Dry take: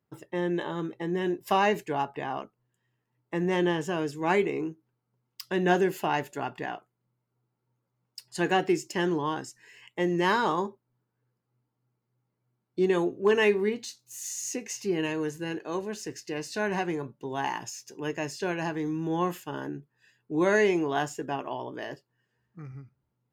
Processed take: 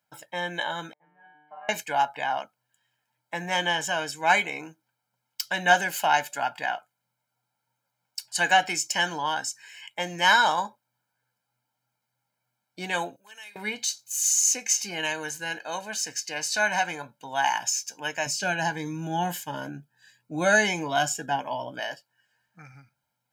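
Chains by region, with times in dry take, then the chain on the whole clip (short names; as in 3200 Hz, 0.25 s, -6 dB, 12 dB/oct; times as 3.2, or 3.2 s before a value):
0.93–1.69 LPF 1500 Hz 24 dB/oct + resonator 150 Hz, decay 1.3 s, mix 100%
13.16–13.56 pre-emphasis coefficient 0.9 + compressor 2:1, threshold -57 dBFS
18.26–21.8 low shelf 390 Hz +10.5 dB + cascading phaser rising 1.5 Hz
whole clip: HPF 1400 Hz 6 dB/oct; dynamic EQ 6400 Hz, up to +4 dB, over -54 dBFS, Q 2.7; comb 1.3 ms, depth 85%; gain +8 dB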